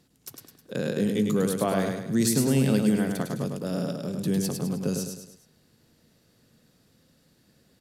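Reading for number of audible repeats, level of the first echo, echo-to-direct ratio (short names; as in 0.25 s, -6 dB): 4, -4.5 dB, -3.5 dB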